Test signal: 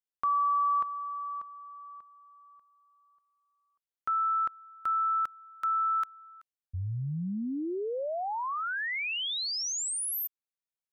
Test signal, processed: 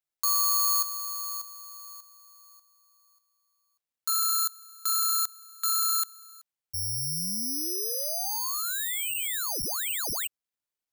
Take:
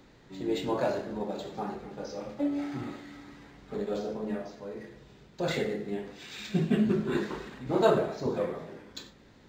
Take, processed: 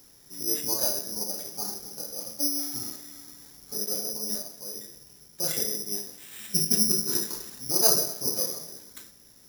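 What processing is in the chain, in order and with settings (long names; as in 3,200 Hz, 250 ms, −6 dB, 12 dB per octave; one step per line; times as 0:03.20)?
bad sample-rate conversion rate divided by 8×, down none, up zero stuff
level −7 dB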